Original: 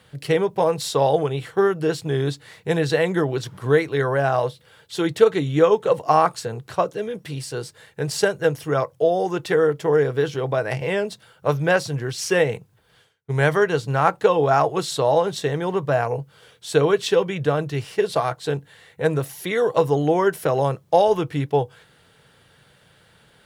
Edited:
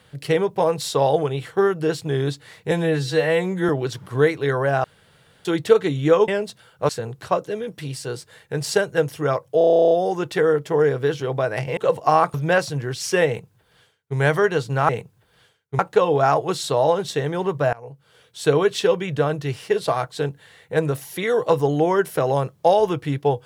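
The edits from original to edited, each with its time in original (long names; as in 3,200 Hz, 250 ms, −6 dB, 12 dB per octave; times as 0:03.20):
0:02.71–0:03.20: time-stretch 2×
0:04.35–0:04.96: fill with room tone
0:05.79–0:06.36: swap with 0:10.91–0:11.52
0:09.05: stutter 0.03 s, 12 plays
0:12.45–0:13.35: duplicate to 0:14.07
0:16.01–0:16.76: fade in, from −23 dB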